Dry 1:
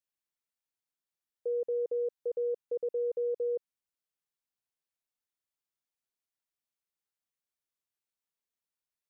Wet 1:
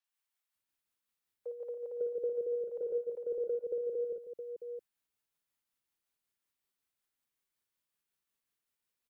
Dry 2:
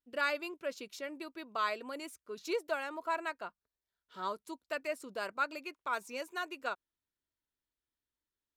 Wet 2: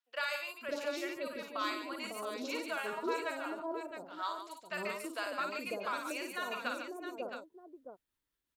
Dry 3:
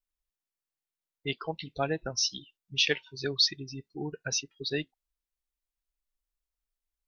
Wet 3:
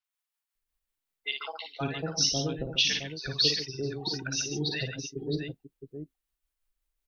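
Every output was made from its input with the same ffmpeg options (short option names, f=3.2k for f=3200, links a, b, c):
-filter_complex "[0:a]acrossover=split=650|5900[a][b][c];[c]adelay=40[d];[a]adelay=550[e];[e][b][d]amix=inputs=3:normalize=0,tremolo=f=5.4:d=0.46,acrossover=split=340|3000[f][g][h];[g]acompressor=threshold=-41dB:ratio=6[i];[f][i][h]amix=inputs=3:normalize=0,asplit=2[j][k];[k]aecho=0:1:55|144|666:0.531|0.355|0.376[l];[j][l]amix=inputs=2:normalize=0,volume=5.5dB"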